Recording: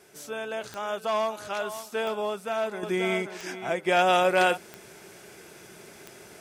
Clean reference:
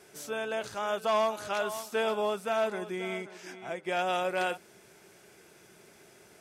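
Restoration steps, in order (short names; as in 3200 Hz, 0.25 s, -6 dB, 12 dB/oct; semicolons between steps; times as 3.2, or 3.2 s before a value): de-click; expander -41 dBFS, range -21 dB; gain correction -8.5 dB, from 2.83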